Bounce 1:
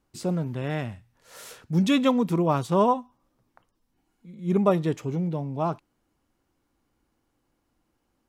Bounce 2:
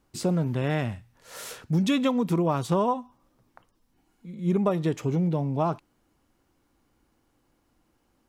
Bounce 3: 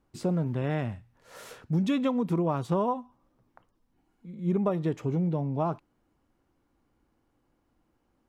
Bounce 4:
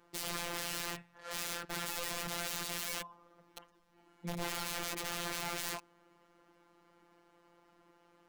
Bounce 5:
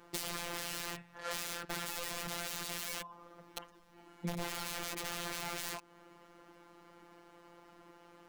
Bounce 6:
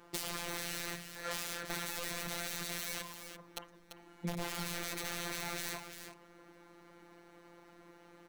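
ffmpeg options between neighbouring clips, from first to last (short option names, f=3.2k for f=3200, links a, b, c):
-af "acompressor=threshold=-25dB:ratio=6,volume=4.5dB"
-af "highshelf=f=2.8k:g=-9.5,volume=-2.5dB"
-filter_complex "[0:a]asplit=2[a][b];[b]highpass=f=720:p=1,volume=22dB,asoftclip=type=tanh:threshold=-15dB[c];[a][c]amix=inputs=2:normalize=0,lowpass=f=3.4k:p=1,volume=-6dB,aeval=exprs='(mod(35.5*val(0)+1,2)-1)/35.5':c=same,afftfilt=real='hypot(re,im)*cos(PI*b)':imag='0':win_size=1024:overlap=0.75"
-af "acompressor=threshold=-42dB:ratio=4,volume=7.5dB"
-af "aecho=1:1:342:0.355"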